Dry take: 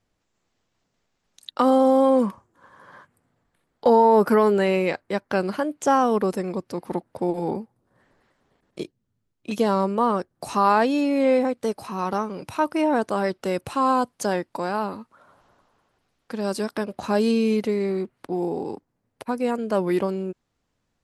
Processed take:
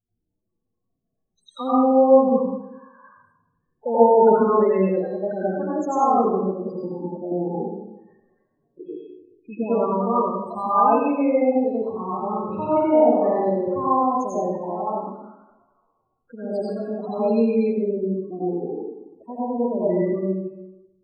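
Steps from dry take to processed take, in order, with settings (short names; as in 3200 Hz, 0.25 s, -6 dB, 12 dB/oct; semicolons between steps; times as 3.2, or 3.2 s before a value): low shelf 94 Hz -3.5 dB; resonator 370 Hz, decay 0.46 s, harmonics odd, mix 60%; loudest bins only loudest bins 8; 12.2–13.7 flutter echo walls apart 8 m, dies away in 0.82 s; plate-style reverb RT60 0.94 s, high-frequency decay 0.55×, pre-delay 75 ms, DRR -10 dB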